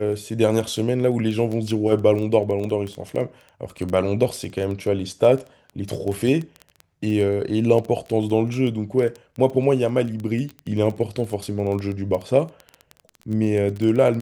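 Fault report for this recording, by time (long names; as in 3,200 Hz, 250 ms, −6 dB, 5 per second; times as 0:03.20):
surface crackle 11 per second −25 dBFS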